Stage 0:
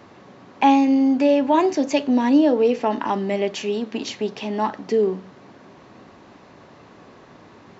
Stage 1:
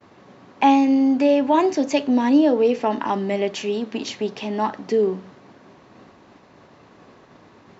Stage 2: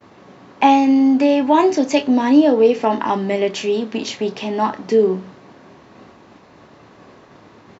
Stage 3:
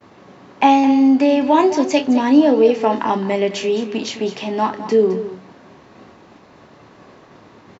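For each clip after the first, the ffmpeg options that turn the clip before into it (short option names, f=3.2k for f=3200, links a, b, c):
-af "agate=range=-33dB:threshold=-43dB:ratio=3:detection=peak"
-filter_complex "[0:a]asplit=2[a][b];[b]adelay=27,volume=-8.5dB[c];[a][c]amix=inputs=2:normalize=0,volume=3.5dB"
-af "aecho=1:1:212:0.237"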